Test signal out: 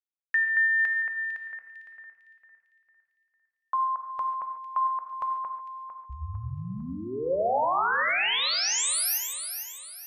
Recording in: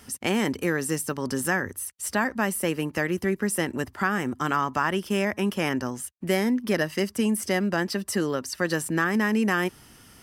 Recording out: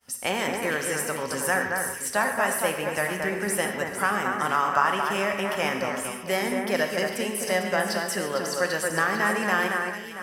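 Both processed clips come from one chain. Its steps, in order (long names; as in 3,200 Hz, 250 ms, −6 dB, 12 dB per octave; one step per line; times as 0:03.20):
downward expander −43 dBFS
low shelf with overshoot 430 Hz −8 dB, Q 1.5
delay that swaps between a low-pass and a high-pass 226 ms, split 2,300 Hz, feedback 63%, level −4 dB
reverb whose tail is shaped and stops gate 170 ms flat, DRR 5 dB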